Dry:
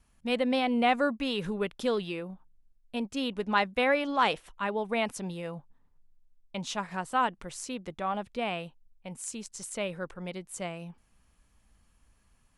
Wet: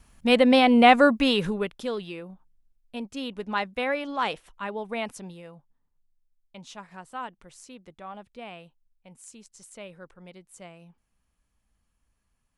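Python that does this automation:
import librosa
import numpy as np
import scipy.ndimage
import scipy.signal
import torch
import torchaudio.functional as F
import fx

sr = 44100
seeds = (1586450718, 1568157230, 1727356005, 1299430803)

y = fx.gain(x, sr, db=fx.line((1.29, 9.5), (1.83, -2.0), (5.1, -2.0), (5.56, -9.0)))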